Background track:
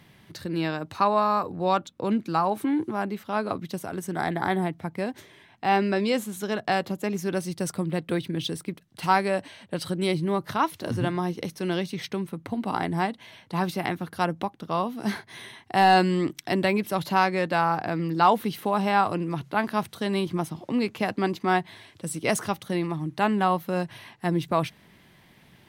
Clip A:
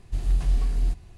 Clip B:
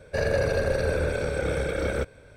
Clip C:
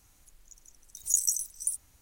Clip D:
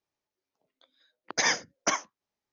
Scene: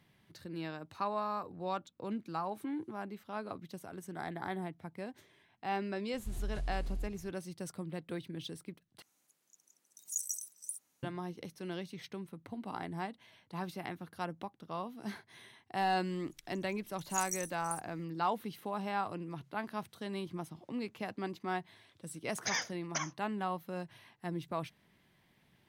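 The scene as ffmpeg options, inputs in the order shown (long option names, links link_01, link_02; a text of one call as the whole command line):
ffmpeg -i bed.wav -i cue0.wav -i cue1.wav -i cue2.wav -i cue3.wav -filter_complex "[3:a]asplit=2[link_01][link_02];[0:a]volume=-13.5dB[link_03];[1:a]acompressor=threshold=-26dB:ratio=6:attack=3.2:release=140:knee=1:detection=peak[link_04];[link_01]highpass=frequency=170:width=0.5412,highpass=frequency=170:width=1.3066[link_05];[link_02]equalizer=frequency=13000:width_type=o:width=0.77:gain=-2.5[link_06];[4:a]equalizer=frequency=360:width_type=o:width=1.4:gain=-8.5[link_07];[link_03]asplit=2[link_08][link_09];[link_08]atrim=end=9.024[link_10];[link_05]atrim=end=2.01,asetpts=PTS-STARTPTS,volume=-11dB[link_11];[link_09]atrim=start=11.026[link_12];[link_04]atrim=end=1.17,asetpts=PTS-STARTPTS,volume=-8dB,afade=type=in:duration=0.004:curve=hsin,afade=type=out:start_time=1.166:duration=0.004:curve=hsin,adelay=6140[link_13];[link_06]atrim=end=2.01,asetpts=PTS-STARTPTS,volume=-11dB,afade=type=in:duration=0.004:curve=hsin,afade=type=out:start_time=2.006:duration=0.004:curve=hsin,adelay=707364S[link_14];[link_07]atrim=end=2.52,asetpts=PTS-STARTPTS,volume=-9dB,afade=type=in:duration=0.004:curve=hsin,afade=type=out:start_time=2.516:duration=0.004:curve=hsin,adelay=21080[link_15];[link_10][link_11]acrossfade=duration=0.004:curve1=hsin:curve2=hsin[link_16];[link_16][link_12]acrossfade=duration=0.004:curve1=hsin:curve2=hsin[link_17];[link_17][link_13][link_14][link_15]amix=inputs=4:normalize=0" out.wav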